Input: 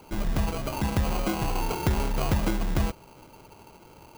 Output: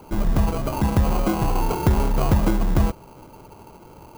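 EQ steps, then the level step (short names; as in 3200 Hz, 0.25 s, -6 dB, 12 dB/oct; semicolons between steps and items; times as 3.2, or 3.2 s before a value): tilt shelf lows +7 dB, about 1400 Hz; bell 1100 Hz +3.5 dB 0.88 oct; high shelf 4000 Hz +10 dB; 0.0 dB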